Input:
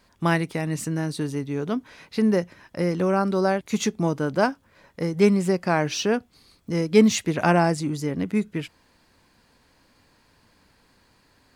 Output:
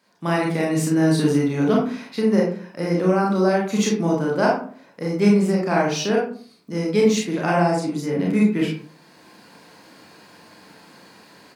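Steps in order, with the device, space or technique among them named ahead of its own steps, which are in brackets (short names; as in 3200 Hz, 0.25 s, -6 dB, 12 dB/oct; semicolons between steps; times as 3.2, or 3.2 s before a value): far laptop microphone (reverb RT60 0.50 s, pre-delay 27 ms, DRR -3 dB; HPF 150 Hz 24 dB/oct; AGC gain up to 14 dB); gain -5 dB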